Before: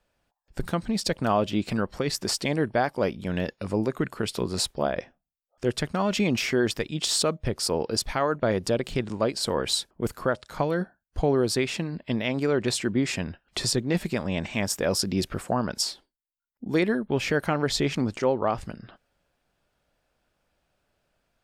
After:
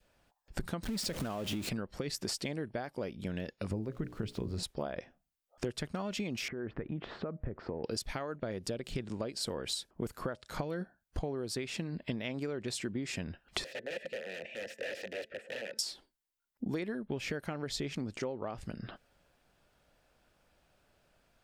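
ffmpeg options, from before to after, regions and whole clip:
ffmpeg -i in.wav -filter_complex "[0:a]asettb=1/sr,asplit=3[link_01][link_02][link_03];[link_01]atrim=end=0.834[link_04];[link_02]atrim=start=0.83:end=1.69,asetpts=PTS-STARTPTS,afade=type=in:duration=0.004:curve=qsin,afade=type=out:start_time=0.856:duration=0.004:curve=qsin,aeval=exprs='val(0)+0.5*0.0398*sgn(val(0))':channel_layout=same,acompressor=threshold=-24dB:ratio=3:attack=3.2:release=140:knee=1:detection=peak[link_05];[link_03]atrim=start=1.686[link_06];[link_04][link_05]acrossfade=duration=0.004:curve1=hsin:curve2=qsin[link_07];[link_07][link_06]acrossfade=duration=0.004:curve1=qsin:curve2=hsin,asettb=1/sr,asplit=3[link_08][link_09][link_10];[link_08]atrim=end=3.714[link_11];[link_09]atrim=start=3.71:end=4.63,asetpts=PTS-STARTPTS,afade=type=in:duration=0.004:curve=qsin,afade=type=out:start_time=0.916:duration=0.004:curve=qsin,aemphasis=mode=reproduction:type=bsi,bandreject=frequency=60:width_type=h:width=6,bandreject=frequency=120:width_type=h:width=6,bandreject=frequency=180:width_type=h:width=6,bandreject=frequency=240:width_type=h:width=6,bandreject=frequency=300:width_type=h:width=6,bandreject=frequency=360:width_type=h:width=6,bandreject=frequency=420:width_type=h:width=6,bandreject=frequency=480:width_type=h:width=6,bandreject=frequency=540:width_type=h:width=6,bandreject=frequency=600:width_type=h:width=6,aeval=exprs='val(0)*gte(abs(val(0)),0.00447)':channel_layout=same[link_12];[link_10]atrim=start=4.626[link_13];[link_11][link_12]acrossfade=duration=0.004:curve1=hsin:curve2=qsin[link_14];[link_14][link_13]acrossfade=duration=0.004:curve1=qsin:curve2=hsin,asettb=1/sr,asplit=3[link_15][link_16][link_17];[link_15]atrim=end=6.484[link_18];[link_16]atrim=start=6.48:end=7.84,asetpts=PTS-STARTPTS,afade=type=in:duration=0.004:curve=qsin,afade=type=out:start_time=1.356:duration=0.004:curve=qsin,lowpass=frequency=1700:width=0.5412,lowpass=frequency=1700:width=1.3066,acompressor=threshold=-35dB:ratio=4:attack=3.2:release=140:knee=1:detection=peak[link_19];[link_17]atrim=start=7.836[link_20];[link_18][link_19]acrossfade=duration=0.004:curve1=hsin:curve2=qsin[link_21];[link_21][link_20]acrossfade=duration=0.004:curve1=qsin:curve2=hsin,asettb=1/sr,asplit=3[link_22][link_23][link_24];[link_22]atrim=end=13.644[link_25];[link_23]atrim=start=13.64:end=15.79,asetpts=PTS-STARTPTS,afade=type=in:duration=0.004:curve=qsin,afade=type=out:start_time=2.146:duration=0.004:curve=qsin,bandreject=frequency=220:width_type=h:width=4,bandreject=frequency=440:width_type=h:width=4,bandreject=frequency=660:width_type=h:width=4,bandreject=frequency=880:width_type=h:width=4,bandreject=frequency=1100:width_type=h:width=4,bandreject=frequency=1320:width_type=h:width=4,bandreject=frequency=1540:width_type=h:width=4,bandreject=frequency=1760:width_type=h:width=4,bandreject=frequency=1980:width_type=h:width=4,aeval=exprs='(mod(14.1*val(0)+1,2)-1)/14.1':channel_layout=same,asplit=3[link_26][link_27][link_28];[link_26]bandpass=frequency=530:width_type=q:width=8,volume=0dB[link_29];[link_27]bandpass=frequency=1840:width_type=q:width=8,volume=-6dB[link_30];[link_28]bandpass=frequency=2480:width_type=q:width=8,volume=-9dB[link_31];[link_29][link_30][link_31]amix=inputs=3:normalize=0[link_32];[link_24]atrim=start=15.786[link_33];[link_25][link_32]acrossfade=duration=0.004:curve1=hsin:curve2=qsin[link_34];[link_34][link_33]acrossfade=duration=0.004:curve1=qsin:curve2=hsin,acompressor=threshold=-36dB:ratio=16,adynamicequalizer=threshold=0.00112:dfrequency=1000:dqfactor=1.4:tfrequency=1000:tqfactor=1.4:attack=5:release=100:ratio=0.375:range=2.5:mode=cutabove:tftype=bell,volume=3.5dB" out.wav

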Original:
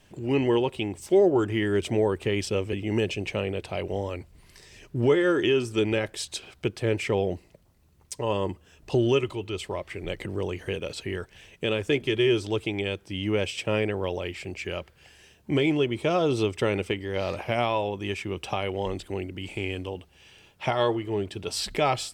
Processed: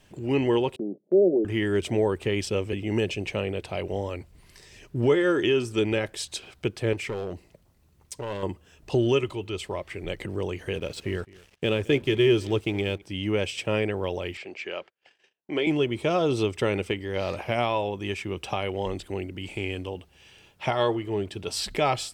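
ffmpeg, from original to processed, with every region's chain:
ffmpeg -i in.wav -filter_complex "[0:a]asettb=1/sr,asplit=3[link_01][link_02][link_03];[link_01]atrim=end=0.764[link_04];[link_02]atrim=start=0.76:end=1.45,asetpts=PTS-STARTPTS,afade=type=in:duration=0.004:curve=qsin,afade=type=out:start_time=0.686:duration=0.004:curve=qsin,asuperpass=centerf=320:order=12:qfactor=0.68,agate=range=-12dB:threshold=-48dB:ratio=16:release=100:detection=peak[link_05];[link_03]atrim=start=1.446[link_06];[link_04][link_05]acrossfade=duration=0.004:curve1=hsin:curve2=qsin[link_07];[link_07][link_06]acrossfade=duration=0.004:curve1=qsin:curve2=hsin,asettb=1/sr,asplit=3[link_08][link_09][link_10];[link_08]atrim=end=6.934[link_11];[link_09]atrim=start=6.93:end=8.43,asetpts=PTS-STARTPTS,afade=type=in:duration=0.004:curve=qsin,afade=type=out:start_time=1.496:duration=0.004:curve=qsin,acompressor=threshold=-33dB:ratio=1.5:attack=3.2:release=140:knee=1:detection=peak,asoftclip=type=hard:threshold=-26.5dB[link_12];[link_10]atrim=start=8.426[link_13];[link_11][link_12]acrossfade=duration=0.004:curve1=hsin:curve2=qsin[link_14];[link_14][link_13]acrossfade=duration=0.004:curve1=qsin:curve2=hsin,asettb=1/sr,asplit=3[link_15][link_16][link_17];[link_15]atrim=end=10.754[link_18];[link_16]atrim=start=10.75:end=13.02,asetpts=PTS-STARTPTS,afade=type=in:duration=0.004:curve=qsin,afade=type=out:start_time=2.266:duration=0.004:curve=qsin,lowshelf=frequency=390:gain=4.5,aeval=exprs='sgn(val(0))*max(abs(val(0))-0.00376,0)':channel_layout=same,aecho=1:1:213:0.0794,atrim=end_sample=100107[link_19];[link_17]atrim=start=13.016[link_20];[link_18][link_19]acrossfade=duration=0.004:curve1=hsin:curve2=qsin[link_21];[link_21][link_20]acrossfade=duration=0.004:curve1=qsin:curve2=hsin,asettb=1/sr,asplit=3[link_22][link_23][link_24];[link_22]atrim=end=14.374[link_25];[link_23]atrim=start=14.37:end=15.67,asetpts=PTS-STARTPTS,afade=type=in:duration=0.004:curve=qsin,afade=type=out:start_time=1.296:duration=0.004:curve=qsin,highpass=350,lowpass=4400,agate=range=-28dB:threshold=-55dB:ratio=16:release=100:detection=peak[link_26];[link_24]atrim=start=15.666[link_27];[link_25][link_26]acrossfade=duration=0.004:curve1=hsin:curve2=qsin[link_28];[link_28][link_27]acrossfade=duration=0.004:curve1=qsin:curve2=hsin" out.wav

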